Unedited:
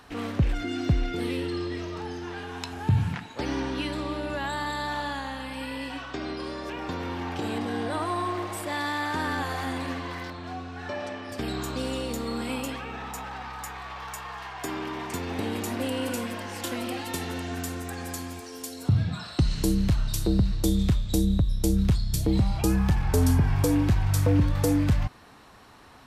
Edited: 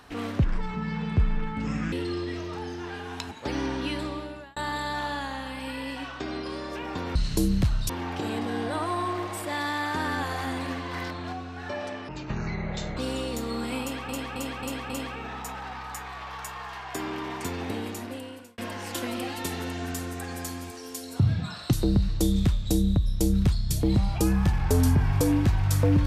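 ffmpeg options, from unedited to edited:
-filter_complex "[0:a]asplit=17[s0][s1][s2][s3][s4][s5][s6][s7][s8][s9][s10][s11][s12][s13][s14][s15][s16];[s0]atrim=end=0.444[s17];[s1]atrim=start=0.44:end=1.36,asetpts=PTS-STARTPTS,asetrate=27342,aresample=44100[s18];[s2]atrim=start=1.356:end=2.752[s19];[s3]atrim=start=3.248:end=4.5,asetpts=PTS-STARTPTS,afade=t=out:st=0.692:d=0.56[s20];[s4]atrim=start=4.5:end=7.092,asetpts=PTS-STARTPTS,afade=t=in:d=0.004:c=hsin[s21];[s5]atrim=start=19.418:end=20.162[s22];[s6]atrim=start=7.088:end=10.132[s23];[s7]atrim=start=10.128:end=10.522,asetpts=PTS-STARTPTS,volume=1.41[s24];[s8]atrim=start=10.518:end=11.284[s25];[s9]atrim=start=11.28:end=11.74,asetpts=PTS-STARTPTS,asetrate=22932,aresample=44100[s26];[s10]atrim=start=11.736:end=12.862[s27];[s11]atrim=start=12.588:end=12.862[s28];[s12]atrim=start=12.588:end=12.862[s29];[s13]atrim=start=12.588:end=12.862[s30];[s14]atrim=start=12.588:end=16.27,asetpts=PTS-STARTPTS,afade=t=out:st=2.642:d=1.04[s31];[s15]atrim=start=16.27:end=19.422,asetpts=PTS-STARTPTS,afade=t=in:d=0.004:c=hsin[s32];[s16]atrim=start=20.158[s33];[s17][s18]acrossfade=d=0.004:c1=hsin:c2=hsin[s34];[s34][s19]acrossfade=d=0.004:c1=hsin:c2=hsin[s35];[s20][s21]concat=n=2:v=0:a=1[s36];[s35][s36]acrossfade=d=0.004:c1=hsin:c2=hsin[s37];[s37][s22]acrossfade=d=0.004:c1=hsin:c2=hsin[s38];[s38][s23]acrossfade=d=0.004:c1=hsin:c2=hsin[s39];[s39][s24]acrossfade=d=0.004:c1=hsin:c2=hsin[s40];[s40][s25]acrossfade=d=0.004:c1=hsin:c2=hsin[s41];[s41][s26]acrossfade=d=0.004:c1=hsin:c2=hsin[s42];[s42][s27]acrossfade=d=0.004:c1=hsin:c2=hsin[s43];[s43][s28]acrossfade=d=0.004:c1=hsin:c2=hsin[s44];[s44][s29]acrossfade=d=0.004:c1=hsin:c2=hsin[s45];[s45][s30]acrossfade=d=0.004:c1=hsin:c2=hsin[s46];[s31][s32]concat=n=2:v=0:a=1[s47];[s46][s47]acrossfade=d=0.004:c1=hsin:c2=hsin[s48];[s48][s33]acrossfade=d=0.004:c1=hsin:c2=hsin"

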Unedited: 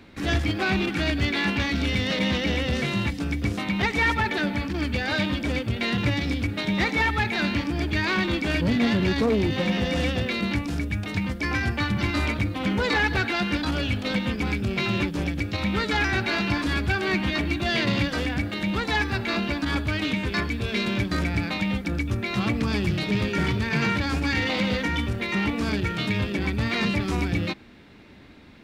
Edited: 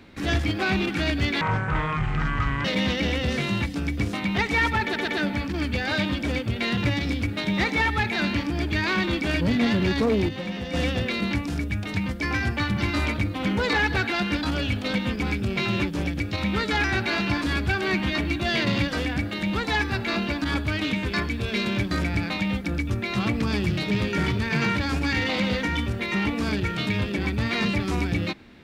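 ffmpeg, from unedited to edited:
-filter_complex "[0:a]asplit=7[s0][s1][s2][s3][s4][s5][s6];[s0]atrim=end=1.414[s7];[s1]atrim=start=1.41:end=2.09,asetpts=PTS-STARTPTS,asetrate=24255,aresample=44100[s8];[s2]atrim=start=2.086:end=4.402[s9];[s3]atrim=start=4.278:end=4.402[s10];[s4]atrim=start=4.278:end=9.492[s11];[s5]atrim=start=9.488:end=9.942,asetpts=PTS-STARTPTS,volume=0.447[s12];[s6]atrim=start=9.938[s13];[s7][s8]acrossfade=d=0.004:c1=hsin:c2=hsin[s14];[s14][s9]acrossfade=d=0.004:c1=hsin:c2=hsin[s15];[s15][s10]acrossfade=d=0.004:c1=hsin:c2=hsin[s16];[s16][s11]acrossfade=d=0.004:c1=hsin:c2=hsin[s17];[s17][s12]acrossfade=d=0.004:c1=hsin:c2=hsin[s18];[s18][s13]acrossfade=d=0.004:c1=hsin:c2=hsin"

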